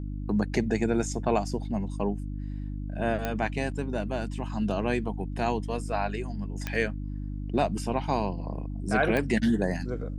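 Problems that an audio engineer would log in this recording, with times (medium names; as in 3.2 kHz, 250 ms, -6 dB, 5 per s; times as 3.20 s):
hum 50 Hz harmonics 6 -34 dBFS
3.25 s: pop -15 dBFS
6.67 s: pop -16 dBFS
9.17 s: pop -15 dBFS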